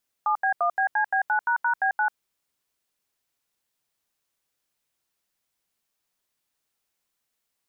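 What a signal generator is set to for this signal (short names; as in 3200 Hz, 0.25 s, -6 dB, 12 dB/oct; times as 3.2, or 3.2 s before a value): DTMF "7B1BCB9##B9", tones 93 ms, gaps 80 ms, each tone -22.5 dBFS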